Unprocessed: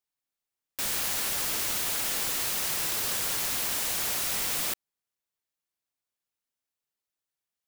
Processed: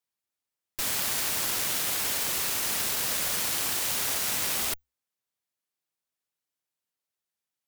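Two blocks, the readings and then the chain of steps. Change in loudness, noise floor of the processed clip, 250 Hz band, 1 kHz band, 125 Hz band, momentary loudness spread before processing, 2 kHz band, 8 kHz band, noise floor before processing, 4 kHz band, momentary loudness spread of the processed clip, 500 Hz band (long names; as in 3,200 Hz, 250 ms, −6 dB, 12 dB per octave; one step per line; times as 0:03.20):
+1.0 dB, below −85 dBFS, +1.5 dB, +1.5 dB, +1.0 dB, 3 LU, +1.5 dB, +1.5 dB, below −85 dBFS, +1.5 dB, 3 LU, +1.0 dB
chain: frequency shifter +65 Hz
harmonic generator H 4 −9 dB, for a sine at −16.5 dBFS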